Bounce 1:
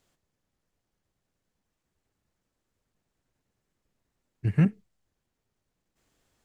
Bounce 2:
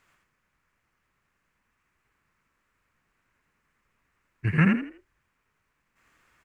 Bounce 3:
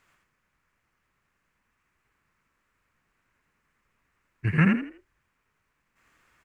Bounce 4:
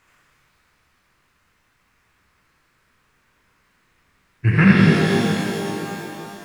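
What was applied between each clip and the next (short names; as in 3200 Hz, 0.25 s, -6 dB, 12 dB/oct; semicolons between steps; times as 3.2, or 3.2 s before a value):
band shelf 1600 Hz +13 dB; on a send: frequency-shifting echo 82 ms, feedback 30%, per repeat +40 Hz, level -3.5 dB
nothing audible
shimmer reverb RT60 3.1 s, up +12 st, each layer -8 dB, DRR -3.5 dB; gain +5.5 dB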